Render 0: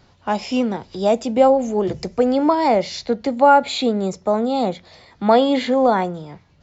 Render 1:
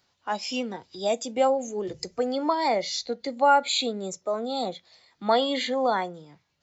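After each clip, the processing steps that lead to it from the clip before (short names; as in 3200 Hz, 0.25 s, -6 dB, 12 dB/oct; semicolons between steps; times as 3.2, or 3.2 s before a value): spectral noise reduction 9 dB; tilt +3 dB/oct; gain -6 dB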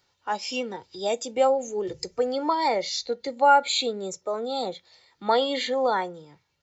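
comb 2.2 ms, depth 36%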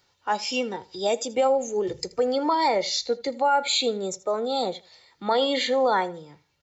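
limiter -16.5 dBFS, peak gain reduction 9 dB; feedback echo 80 ms, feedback 26%, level -21 dB; gain +3 dB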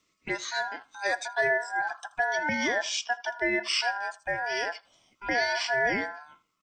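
envelope phaser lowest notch 400 Hz, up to 1700 Hz, full sweep at -23.5 dBFS; ring modulator 1200 Hz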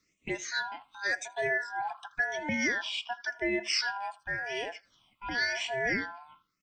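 phaser stages 6, 0.92 Hz, lowest notch 430–1400 Hz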